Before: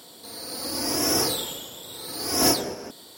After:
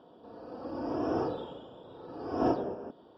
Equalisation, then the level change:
moving average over 21 samples
high-frequency loss of the air 280 metres
low-shelf EQ 260 Hz −6 dB
0.0 dB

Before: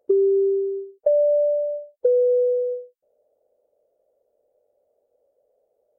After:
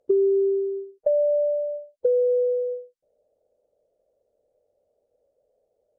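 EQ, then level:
high-frequency loss of the air 58 metres
bass and treble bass +9 dB, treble +8 dB
−3.0 dB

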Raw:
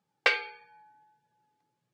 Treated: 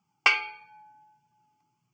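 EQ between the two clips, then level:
phaser with its sweep stopped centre 2,600 Hz, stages 8
+6.5 dB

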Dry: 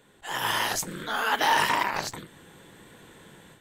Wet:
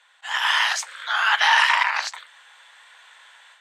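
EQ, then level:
Bessel high-pass filter 1,300 Hz, order 8
dynamic equaliser 2,000 Hz, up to +3 dB, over −37 dBFS, Q 0.79
high-frequency loss of the air 94 metres
+8.5 dB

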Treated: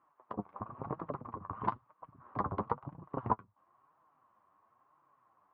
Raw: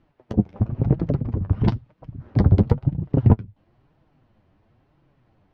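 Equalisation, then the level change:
resonant band-pass 1,100 Hz, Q 8.4
high-frequency loss of the air 180 metres
+11.5 dB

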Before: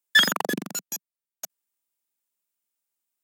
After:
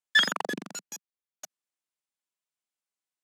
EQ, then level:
high-frequency loss of the air 56 metres
low-shelf EQ 350 Hz −6 dB
−3.0 dB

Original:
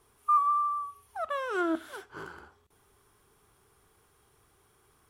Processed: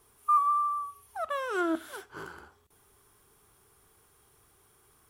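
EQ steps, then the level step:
high-shelf EQ 7,800 Hz +8 dB
0.0 dB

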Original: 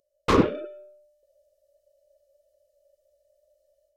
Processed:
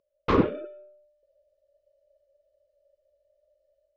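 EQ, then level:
high-frequency loss of the air 220 metres
−1.5 dB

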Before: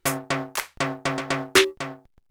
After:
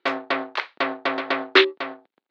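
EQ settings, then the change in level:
high-pass filter 270 Hz 24 dB per octave
Chebyshev low-pass filter 4,100 Hz, order 4
+3.0 dB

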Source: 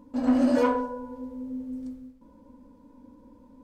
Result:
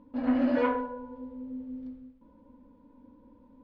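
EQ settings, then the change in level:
low-pass filter 3,700 Hz 24 dB per octave
dynamic equaliser 2,000 Hz, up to +6 dB, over −50 dBFS, Q 1.6
−4.0 dB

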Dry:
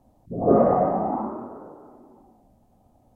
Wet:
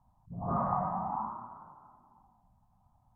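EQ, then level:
drawn EQ curve 170 Hz 0 dB, 270 Hz −16 dB, 470 Hz −25 dB, 990 Hz +8 dB, 2,000 Hz −8 dB
−6.0 dB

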